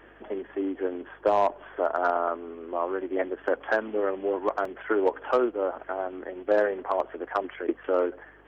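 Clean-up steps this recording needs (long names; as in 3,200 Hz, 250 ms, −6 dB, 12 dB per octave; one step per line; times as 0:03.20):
hum removal 50.6 Hz, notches 4
repair the gap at 0:04.65, 3.1 ms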